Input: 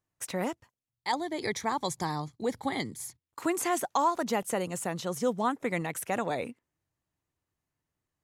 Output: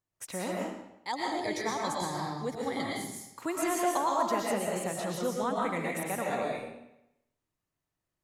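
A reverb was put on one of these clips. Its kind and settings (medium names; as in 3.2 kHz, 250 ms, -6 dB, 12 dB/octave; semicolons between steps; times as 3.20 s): algorithmic reverb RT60 0.84 s, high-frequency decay 0.9×, pre-delay 80 ms, DRR -3 dB; trim -5 dB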